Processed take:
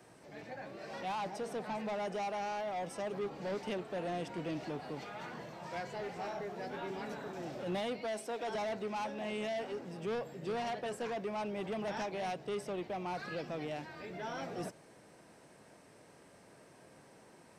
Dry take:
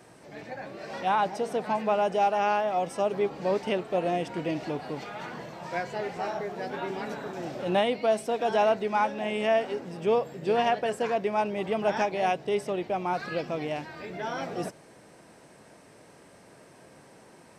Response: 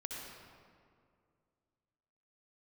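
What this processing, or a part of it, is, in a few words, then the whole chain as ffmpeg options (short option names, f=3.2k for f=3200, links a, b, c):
one-band saturation: -filter_complex "[0:a]asettb=1/sr,asplit=3[a][b][c];[a]atrim=end=8.014[d];[b]atrim=start=8.01:end=8.55,asetpts=PTS-STARTPTS,afade=t=in:d=0.004:c=qsin,afade=t=out:st=0.536:d=0.004:c=qsin,highpass=240[e];[c]atrim=start=8.546[f];[d][e]acrossfade=d=0.004:c1=hsin:c2=qsin[g];[g][f]acrossfade=d=0.004:c1=qsin:c2=hsin,acrossover=split=220|4000[h][i][j];[i]asoftclip=type=tanh:threshold=-29dB[k];[h][k][j]amix=inputs=3:normalize=0,volume=-6dB"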